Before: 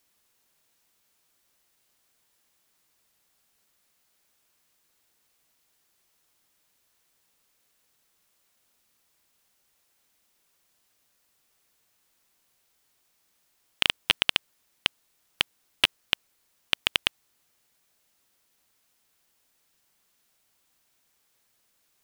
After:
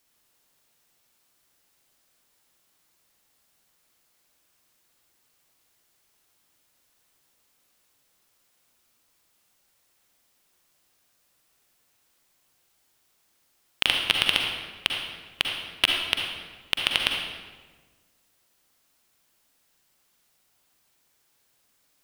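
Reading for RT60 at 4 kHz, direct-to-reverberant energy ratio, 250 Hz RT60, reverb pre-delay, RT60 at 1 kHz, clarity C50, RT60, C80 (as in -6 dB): 1.0 s, 1.0 dB, 1.6 s, 39 ms, 1.3 s, 1.5 dB, 1.4 s, 4.0 dB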